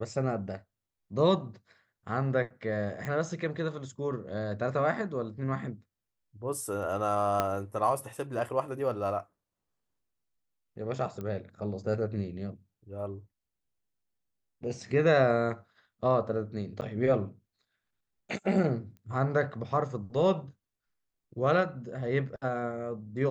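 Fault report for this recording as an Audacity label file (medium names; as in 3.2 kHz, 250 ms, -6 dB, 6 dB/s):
3.050000	3.050000	pop -23 dBFS
7.400000	7.400000	pop -13 dBFS
11.210000	11.210000	pop -26 dBFS
16.810000	16.820000	dropout 9.6 ms
18.970000	18.970000	pop -38 dBFS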